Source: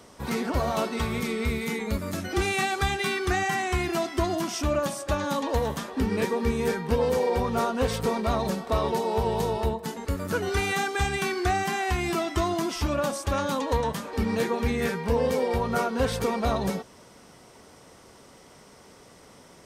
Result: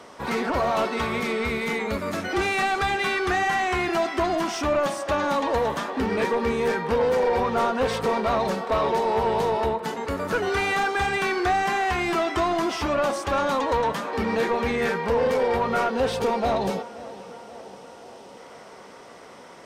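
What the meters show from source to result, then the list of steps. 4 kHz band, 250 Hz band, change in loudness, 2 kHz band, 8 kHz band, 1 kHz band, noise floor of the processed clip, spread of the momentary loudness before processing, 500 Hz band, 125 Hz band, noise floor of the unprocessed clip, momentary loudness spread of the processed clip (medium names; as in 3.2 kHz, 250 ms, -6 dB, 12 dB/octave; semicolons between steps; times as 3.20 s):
+1.5 dB, +0.5 dB, +3.0 dB, +4.5 dB, -3.0 dB, +5.0 dB, -45 dBFS, 4 LU, +3.5 dB, -5.0 dB, -52 dBFS, 6 LU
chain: time-frequency box 15.91–18.37 s, 950–2400 Hz -6 dB; overdrive pedal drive 19 dB, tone 1.8 kHz, clips at -10 dBFS; on a send: tape echo 530 ms, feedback 74%, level -16.5 dB, low-pass 3 kHz; on the sum: trim -2.5 dB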